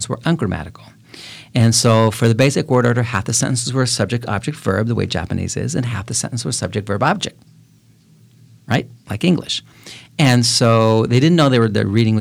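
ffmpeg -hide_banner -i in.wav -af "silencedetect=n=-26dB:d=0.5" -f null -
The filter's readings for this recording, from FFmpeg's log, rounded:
silence_start: 7.28
silence_end: 8.68 | silence_duration: 1.40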